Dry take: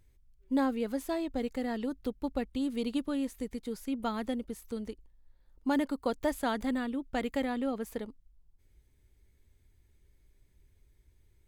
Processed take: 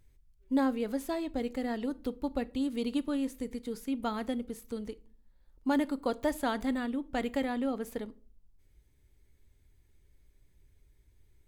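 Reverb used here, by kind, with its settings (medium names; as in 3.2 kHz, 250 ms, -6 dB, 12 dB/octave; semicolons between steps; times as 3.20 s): simulated room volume 390 m³, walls furnished, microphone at 0.3 m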